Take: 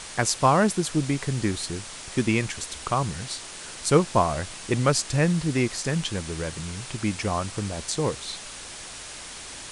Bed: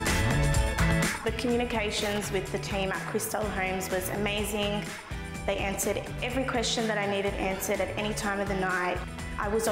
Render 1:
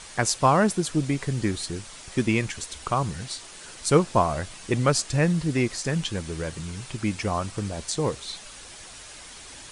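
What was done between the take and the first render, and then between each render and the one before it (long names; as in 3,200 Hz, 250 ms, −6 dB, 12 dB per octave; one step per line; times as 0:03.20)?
broadband denoise 6 dB, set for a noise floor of −40 dBFS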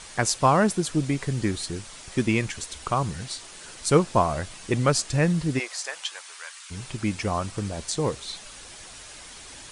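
0:05.58–0:06.70: high-pass filter 520 Hz → 1,200 Hz 24 dB per octave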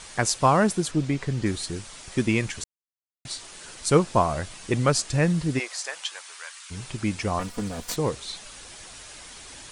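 0:00.91–0:01.46: high-frequency loss of the air 62 metres
0:02.64–0:03.25: silence
0:07.39–0:07.96: lower of the sound and its delayed copy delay 4.1 ms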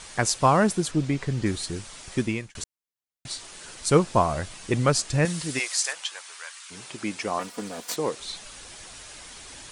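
0:02.14–0:02.55: fade out
0:05.25–0:05.93: spectral tilt +3 dB per octave
0:06.60–0:08.20: high-pass filter 270 Hz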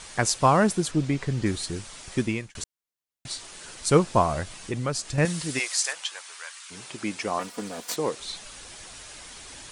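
0:04.43–0:05.18: downward compressor 1.5 to 1, threshold −35 dBFS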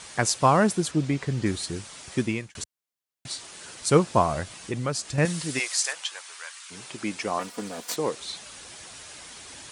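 high-pass filter 73 Hz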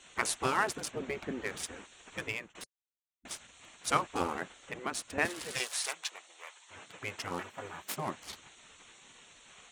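adaptive Wiener filter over 9 samples
gate on every frequency bin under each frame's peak −10 dB weak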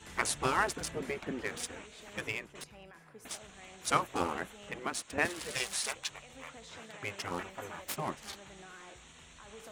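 mix in bed −24 dB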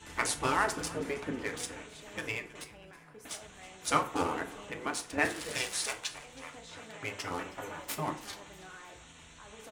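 echo with shifted repeats 320 ms, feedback 43%, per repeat −55 Hz, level −20 dB
feedback delay network reverb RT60 0.47 s, low-frequency decay 0.9×, high-frequency decay 0.6×, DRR 4.5 dB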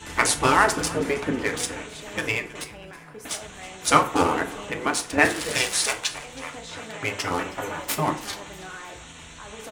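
level +10.5 dB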